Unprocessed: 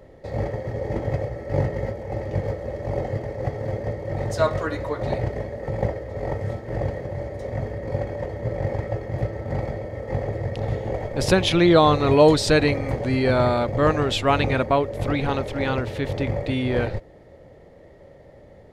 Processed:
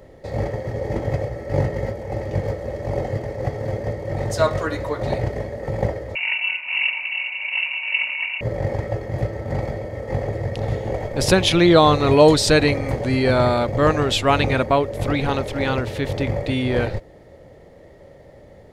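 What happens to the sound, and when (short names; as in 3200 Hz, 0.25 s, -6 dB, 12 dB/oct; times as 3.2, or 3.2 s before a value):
6.15–8.41 inverted band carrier 2800 Hz
whole clip: high shelf 4400 Hz +5.5 dB; gain +2 dB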